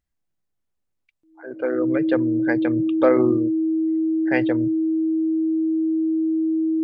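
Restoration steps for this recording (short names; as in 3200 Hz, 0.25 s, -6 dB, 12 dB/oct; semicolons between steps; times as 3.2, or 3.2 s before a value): notch 320 Hz, Q 30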